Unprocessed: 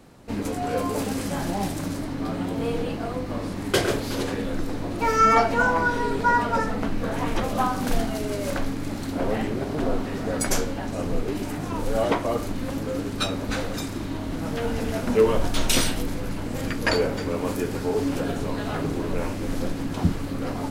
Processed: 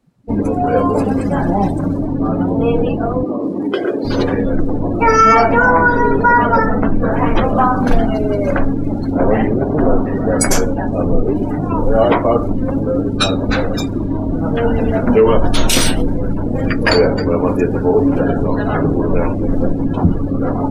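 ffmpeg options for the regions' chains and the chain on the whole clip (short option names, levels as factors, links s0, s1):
-filter_complex "[0:a]asettb=1/sr,asplit=3[s0][s1][s2];[s0]atrim=end=3.234[s3];[s1]atrim=start=3.23:end=4.05,asetpts=PTS-STARTPTS,afade=t=in:d=0.004:c=qsin,afade=t=out:st=0.816:d=0.004:c=qsin,acompressor=threshold=0.0447:ratio=8:attack=3.2:release=140:knee=1:detection=peak,highpass=220,equalizer=f=330:w=1.7:g=6.5[s4];[s2]atrim=start=4.046[s5];[s3][s4]acrossfade=d=0.004:c1=hsin:c2=qsin[s6];[s6][s5]acrossfade=d=0.004:c1=qsin:c2=hsin,afftdn=nr=28:nf=-34,alimiter=level_in=4.47:limit=0.891:release=50:level=0:latency=1,volume=0.891"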